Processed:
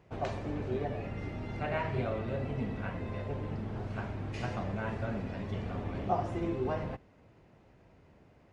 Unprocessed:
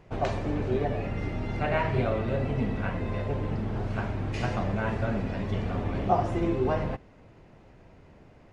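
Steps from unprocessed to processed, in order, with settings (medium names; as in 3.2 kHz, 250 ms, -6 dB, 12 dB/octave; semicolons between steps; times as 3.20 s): high-pass 44 Hz; trim -6.5 dB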